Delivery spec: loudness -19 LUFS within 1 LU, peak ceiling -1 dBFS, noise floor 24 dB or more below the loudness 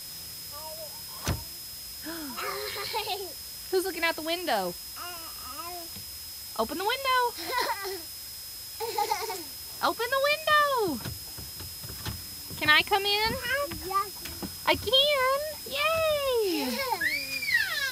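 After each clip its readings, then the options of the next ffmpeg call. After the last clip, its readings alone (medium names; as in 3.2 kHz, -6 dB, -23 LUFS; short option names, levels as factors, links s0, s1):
steady tone 5.1 kHz; tone level -42 dBFS; noise floor -41 dBFS; noise floor target -53 dBFS; loudness -28.5 LUFS; peak level -5.0 dBFS; loudness target -19.0 LUFS
-> -af "bandreject=f=5100:w=30"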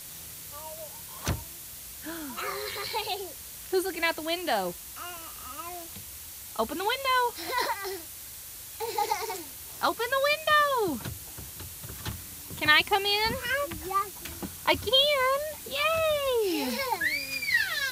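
steady tone not found; noise floor -43 dBFS; noise floor target -52 dBFS
-> -af "afftdn=nr=9:nf=-43"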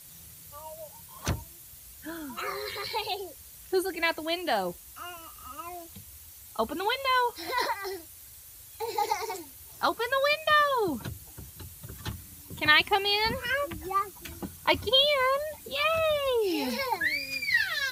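noise floor -49 dBFS; noise floor target -52 dBFS
-> -af "afftdn=nr=6:nf=-49"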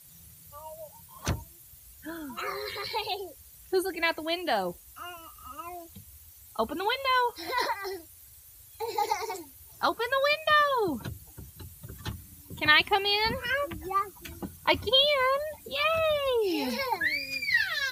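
noise floor -53 dBFS; loudness -27.5 LUFS; peak level -5.0 dBFS; loudness target -19.0 LUFS
-> -af "volume=2.66,alimiter=limit=0.891:level=0:latency=1"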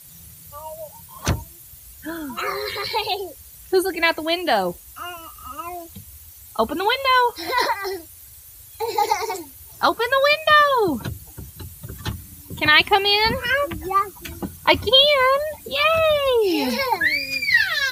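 loudness -19.0 LUFS; peak level -1.0 dBFS; noise floor -44 dBFS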